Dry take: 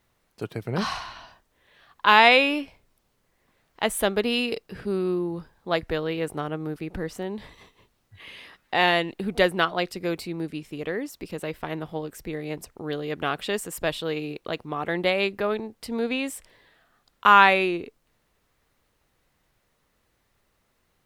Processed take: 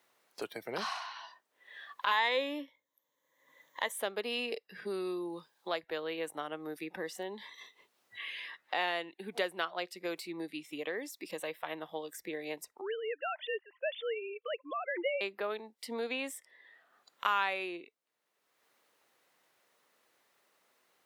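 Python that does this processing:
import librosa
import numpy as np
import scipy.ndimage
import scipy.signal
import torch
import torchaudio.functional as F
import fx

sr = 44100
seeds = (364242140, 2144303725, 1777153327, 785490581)

y = fx.ripple_eq(x, sr, per_octave=1.1, db=13, at=(2.11, 3.92))
y = fx.sine_speech(y, sr, at=(12.81, 15.21))
y = scipy.signal.sosfilt(scipy.signal.butter(2, 400.0, 'highpass', fs=sr, output='sos'), y)
y = fx.noise_reduce_blind(y, sr, reduce_db=13)
y = fx.band_squash(y, sr, depth_pct=70)
y = F.gain(torch.from_numpy(y), -8.0).numpy()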